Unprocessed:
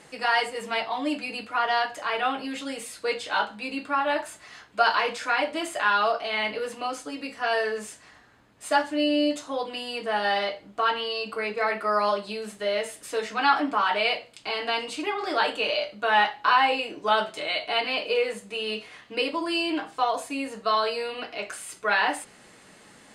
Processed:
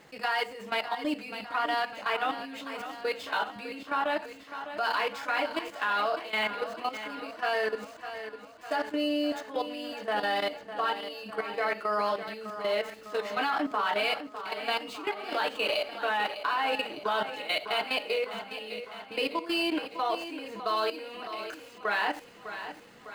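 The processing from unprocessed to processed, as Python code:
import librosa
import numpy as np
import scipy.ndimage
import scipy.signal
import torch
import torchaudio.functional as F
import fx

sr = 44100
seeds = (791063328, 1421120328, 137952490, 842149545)

y = scipy.ndimage.median_filter(x, 5, mode='constant')
y = fx.level_steps(y, sr, step_db=14)
y = fx.echo_feedback(y, sr, ms=604, feedback_pct=59, wet_db=-11)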